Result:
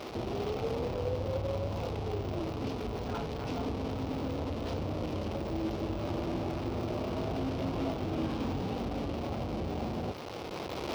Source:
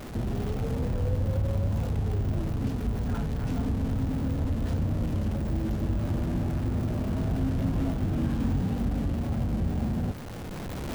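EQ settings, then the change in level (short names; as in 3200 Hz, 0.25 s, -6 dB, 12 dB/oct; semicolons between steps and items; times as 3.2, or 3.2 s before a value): HPF 57 Hz; band shelf 650 Hz +12 dB 2.4 oct; band shelf 3500 Hz +12.5 dB; -9.0 dB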